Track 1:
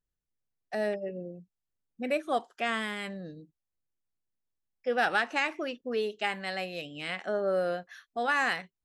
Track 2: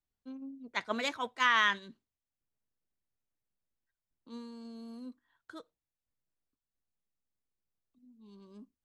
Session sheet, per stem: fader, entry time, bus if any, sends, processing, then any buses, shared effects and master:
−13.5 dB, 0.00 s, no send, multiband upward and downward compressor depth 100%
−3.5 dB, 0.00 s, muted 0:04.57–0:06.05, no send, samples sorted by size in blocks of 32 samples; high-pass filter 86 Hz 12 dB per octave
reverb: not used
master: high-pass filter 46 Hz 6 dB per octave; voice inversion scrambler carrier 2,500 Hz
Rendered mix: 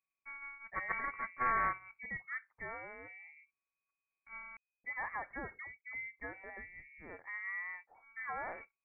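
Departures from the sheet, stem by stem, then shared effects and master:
stem 1: missing multiband upward and downward compressor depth 100%
master: missing high-pass filter 46 Hz 6 dB per octave

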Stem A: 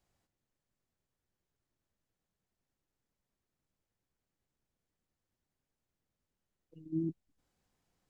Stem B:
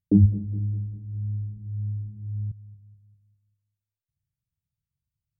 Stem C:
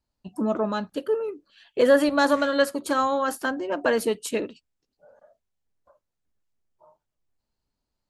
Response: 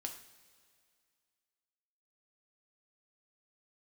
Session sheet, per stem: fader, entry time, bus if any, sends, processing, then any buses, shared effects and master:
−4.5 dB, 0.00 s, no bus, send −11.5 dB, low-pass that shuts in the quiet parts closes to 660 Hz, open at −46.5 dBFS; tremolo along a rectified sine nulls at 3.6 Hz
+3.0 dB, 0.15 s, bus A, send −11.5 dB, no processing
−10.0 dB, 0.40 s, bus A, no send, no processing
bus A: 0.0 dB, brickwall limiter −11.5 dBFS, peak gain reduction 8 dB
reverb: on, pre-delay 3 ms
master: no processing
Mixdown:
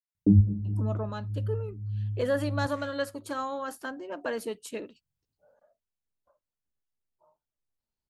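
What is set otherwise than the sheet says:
stem A: muted
stem B +3.0 dB → −3.5 dB

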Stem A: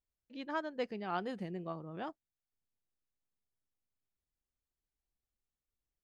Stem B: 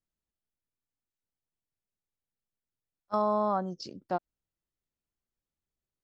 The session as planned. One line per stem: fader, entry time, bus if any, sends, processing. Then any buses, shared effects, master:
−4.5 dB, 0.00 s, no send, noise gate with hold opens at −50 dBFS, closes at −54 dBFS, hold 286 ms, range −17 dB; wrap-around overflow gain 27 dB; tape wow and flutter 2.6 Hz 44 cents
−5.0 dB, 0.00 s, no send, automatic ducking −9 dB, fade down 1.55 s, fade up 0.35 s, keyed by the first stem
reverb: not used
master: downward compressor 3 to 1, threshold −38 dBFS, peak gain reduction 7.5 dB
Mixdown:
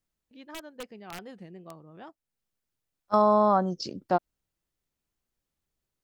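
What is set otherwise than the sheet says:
stem B −5.0 dB → +6.5 dB
master: missing downward compressor 3 to 1, threshold −38 dBFS, peak gain reduction 7.5 dB

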